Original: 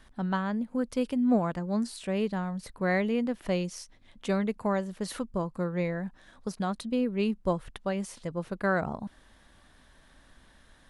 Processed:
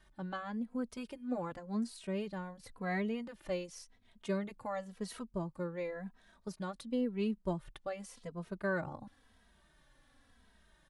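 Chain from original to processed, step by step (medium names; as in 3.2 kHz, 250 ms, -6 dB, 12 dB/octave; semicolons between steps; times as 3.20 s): endless flanger 2.8 ms -0.93 Hz; trim -5.5 dB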